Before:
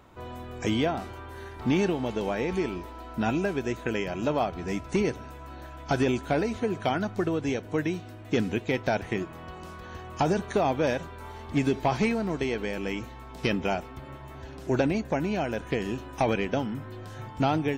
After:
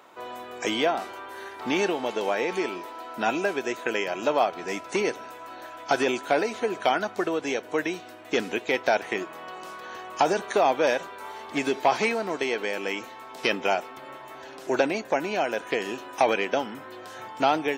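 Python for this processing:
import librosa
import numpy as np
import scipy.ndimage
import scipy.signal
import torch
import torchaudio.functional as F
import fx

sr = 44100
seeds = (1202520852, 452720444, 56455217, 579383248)

y = scipy.signal.sosfilt(scipy.signal.butter(2, 450.0, 'highpass', fs=sr, output='sos'), x)
y = y * 10.0 ** (5.5 / 20.0)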